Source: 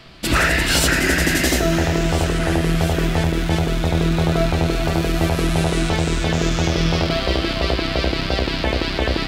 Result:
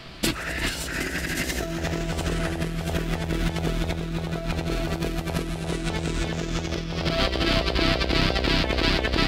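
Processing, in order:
0:04.75–0:07.01: parametric band 290 Hz +2.5 dB 1.2 octaves
compressor whose output falls as the input rises −22 dBFS, ratio −0.5
level −2.5 dB

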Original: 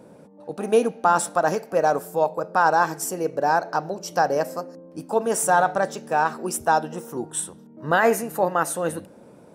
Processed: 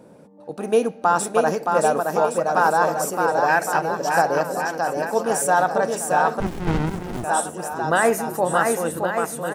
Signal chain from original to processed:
0:03.48–0:03.96: flat-topped bell 2,300 Hz +13.5 dB 1.1 octaves
bouncing-ball delay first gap 620 ms, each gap 0.8×, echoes 5
0:06.40–0:07.24: windowed peak hold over 65 samples

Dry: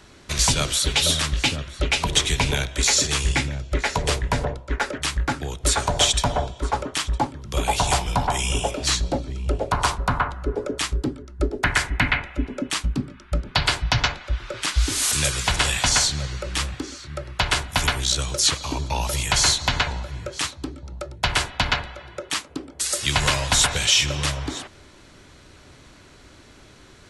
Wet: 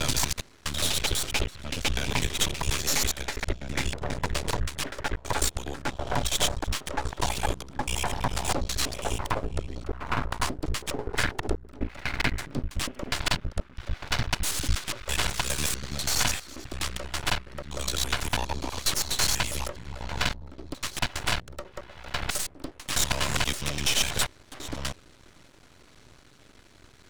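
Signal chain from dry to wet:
slices reordered back to front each 82 ms, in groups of 8
half-wave rectification
level −2 dB

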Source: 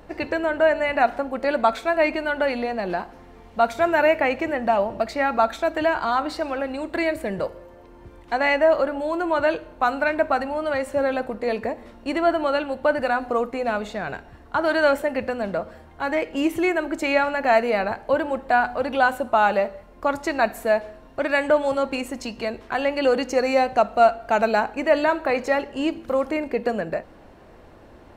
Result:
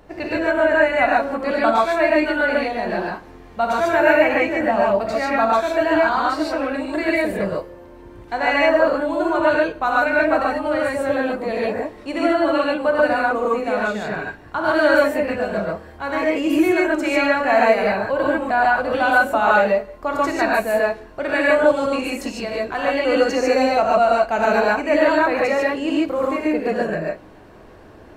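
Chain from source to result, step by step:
reverb whose tail is shaped and stops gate 170 ms rising, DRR −5 dB
level −2 dB

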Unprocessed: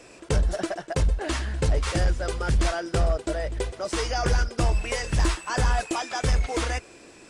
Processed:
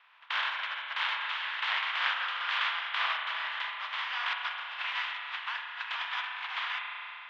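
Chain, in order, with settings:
compressing power law on the bin magnitudes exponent 0.36
elliptic band-pass filter 970–3,400 Hz, stop band 70 dB
0:04.33–0:06.46: compressor whose output falls as the input rises −34 dBFS, ratio −0.5
high-frequency loss of the air 54 metres
spring reverb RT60 3.3 s, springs 33 ms, chirp 40 ms, DRR 1.5 dB
one half of a high-frequency compander decoder only
level −3.5 dB

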